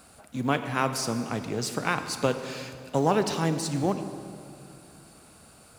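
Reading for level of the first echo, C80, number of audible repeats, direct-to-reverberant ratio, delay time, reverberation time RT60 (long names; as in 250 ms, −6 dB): no echo audible, 10.0 dB, no echo audible, 8.5 dB, no echo audible, 2.5 s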